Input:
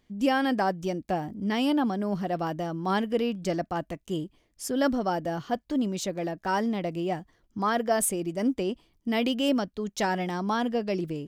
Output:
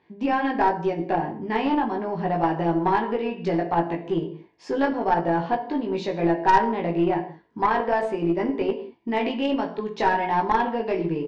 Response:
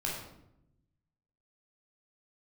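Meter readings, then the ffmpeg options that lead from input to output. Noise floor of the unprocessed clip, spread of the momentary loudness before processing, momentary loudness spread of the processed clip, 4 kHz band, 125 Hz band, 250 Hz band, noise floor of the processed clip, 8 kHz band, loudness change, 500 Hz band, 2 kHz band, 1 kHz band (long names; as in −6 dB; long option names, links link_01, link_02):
−69 dBFS, 8 LU, 6 LU, −3.0 dB, +3.5 dB, +2.0 dB, −52 dBFS, below −15 dB, +4.5 dB, +4.5 dB, +4.5 dB, +8.0 dB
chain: -filter_complex "[0:a]acompressor=threshold=-28dB:ratio=6,highpass=210,equalizer=frequency=220:width_type=q:width=4:gain=-6,equalizer=frequency=400:width_type=q:width=4:gain=5,equalizer=frequency=610:width_type=q:width=4:gain=-5,equalizer=frequency=940:width_type=q:width=4:gain=7,equalizer=frequency=1300:width_type=q:width=4:gain=-6,equalizer=frequency=3200:width_type=q:width=4:gain=-8,lowpass=frequency=3500:width=0.5412,lowpass=frequency=3500:width=1.3066,asplit=2[link_01][link_02];[link_02]adelay=18,volume=-2dB[link_03];[link_01][link_03]amix=inputs=2:normalize=0,asplit=2[link_04][link_05];[1:a]atrim=start_sample=2205,afade=type=out:start_time=0.26:duration=0.01,atrim=end_sample=11907,asetrate=48510,aresample=44100[link_06];[link_05][link_06]afir=irnorm=-1:irlink=0,volume=-6dB[link_07];[link_04][link_07]amix=inputs=2:normalize=0,aeval=exprs='0.237*(cos(1*acos(clip(val(0)/0.237,-1,1)))-cos(1*PI/2))+0.0422*(cos(4*acos(clip(val(0)/0.237,-1,1)))-cos(4*PI/2))+0.0168*(cos(6*acos(clip(val(0)/0.237,-1,1)))-cos(6*PI/2))+0.00376*(cos(7*acos(clip(val(0)/0.237,-1,1)))-cos(7*PI/2))':channel_layout=same,volume=5dB"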